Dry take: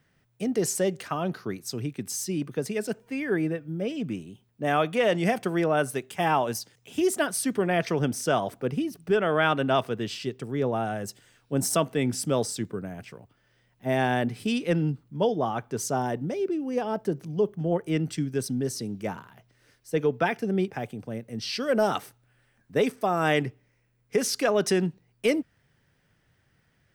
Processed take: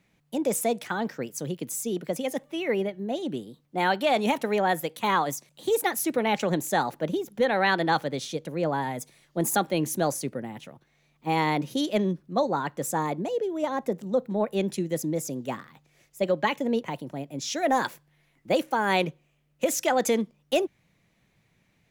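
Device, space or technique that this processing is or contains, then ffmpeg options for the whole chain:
nightcore: -af "asetrate=54243,aresample=44100"

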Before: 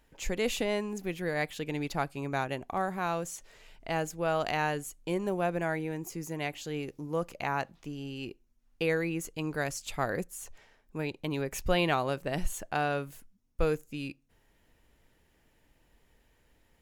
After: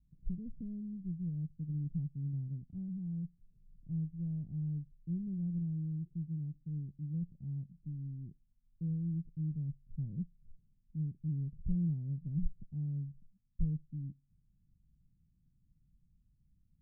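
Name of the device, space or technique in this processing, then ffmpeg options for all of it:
the neighbour's flat through the wall: -af "lowpass=frequency=180:width=0.5412,lowpass=frequency=180:width=1.3066,equalizer=frequency=160:width_type=o:width=0.98:gain=8,volume=-3dB"

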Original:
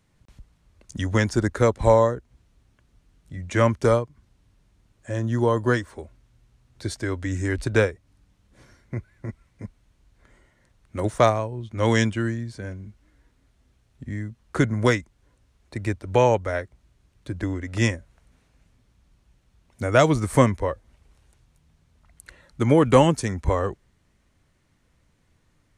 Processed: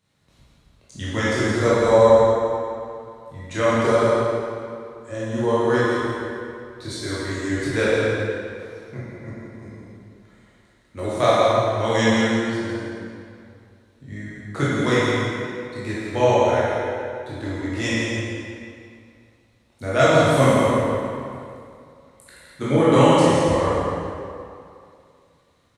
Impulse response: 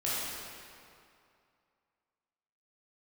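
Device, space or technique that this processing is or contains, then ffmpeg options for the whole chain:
PA in a hall: -filter_complex "[0:a]highpass=frequency=140:poles=1,equalizer=frequency=3900:width_type=o:width=0.26:gain=8,aecho=1:1:166:0.501[link_01];[1:a]atrim=start_sample=2205[link_02];[link_01][link_02]afir=irnorm=-1:irlink=0,volume=-4.5dB"

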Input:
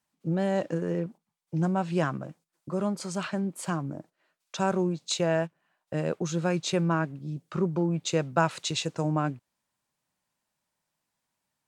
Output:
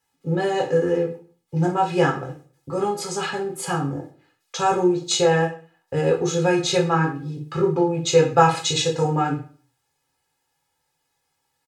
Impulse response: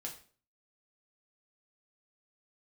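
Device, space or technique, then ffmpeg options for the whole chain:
microphone above a desk: -filter_complex "[0:a]aecho=1:1:2.4:0.85[link_01];[1:a]atrim=start_sample=2205[link_02];[link_01][link_02]afir=irnorm=-1:irlink=0,volume=8.5dB"

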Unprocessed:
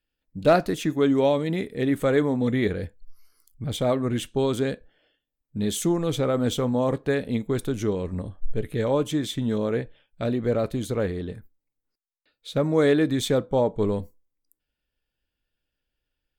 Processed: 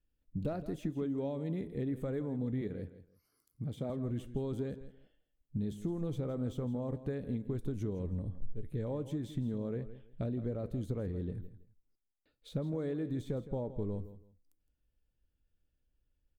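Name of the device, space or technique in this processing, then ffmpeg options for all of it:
ASMR close-microphone chain: -filter_complex "[0:a]lowshelf=frequency=150:gain=8,acompressor=threshold=-32dB:ratio=5,highshelf=frequency=9300:gain=4.5,asettb=1/sr,asplit=3[link_01][link_02][link_03];[link_01]atrim=end=2.614[link_04];[link_02]atrim=start=2.61:end=3.9,asetpts=PTS-STARTPTS,afade=type=in:duration=0.004:curve=qsin,afade=type=out:start_time=1.286:duration=0.004:curve=qsin,highpass=140[link_05];[link_03]atrim=start=3.896[link_06];[link_04][link_05]acrossfade=duration=0.004:curve1=hsin:curve2=qsin[link_07];[link_07][link_06]acrossfade=duration=0.004:curve1=qsin:curve2=hsin,deesser=1,tiltshelf=frequency=830:gain=6,aecho=1:1:164|328:0.2|0.0439,volume=-7dB"

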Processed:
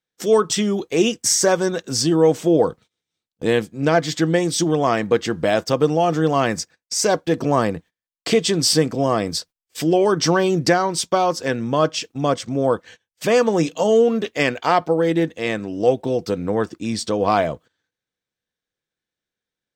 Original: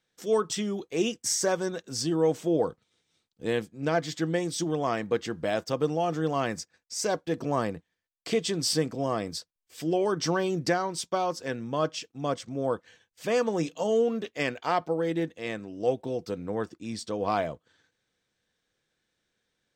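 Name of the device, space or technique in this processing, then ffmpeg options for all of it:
parallel compression: -filter_complex "[0:a]agate=range=-23dB:threshold=-50dB:ratio=16:detection=peak,asplit=2[link_01][link_02];[link_02]acompressor=threshold=-38dB:ratio=6,volume=-0.5dB[link_03];[link_01][link_03]amix=inputs=2:normalize=0,volume=8dB"

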